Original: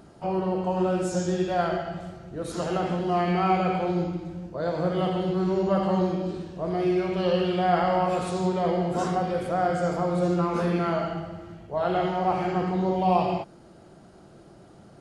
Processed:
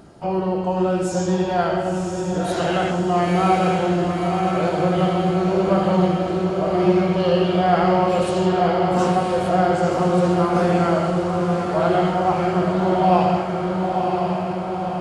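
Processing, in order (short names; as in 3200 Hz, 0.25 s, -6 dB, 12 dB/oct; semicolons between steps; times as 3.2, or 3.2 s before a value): spectral gain 2.48–2.91, 1400–4100 Hz +7 dB; on a send: diffused feedback echo 1.007 s, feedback 65%, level -4 dB; on the sum: gain +4.5 dB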